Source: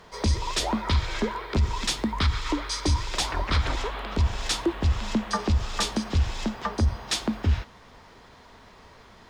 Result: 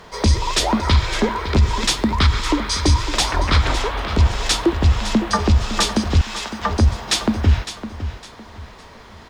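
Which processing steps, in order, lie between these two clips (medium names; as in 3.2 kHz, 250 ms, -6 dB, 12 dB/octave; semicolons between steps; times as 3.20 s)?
6.21–6.63 s: high-pass 890 Hz; feedback delay 558 ms, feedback 30%, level -12 dB; trim +8 dB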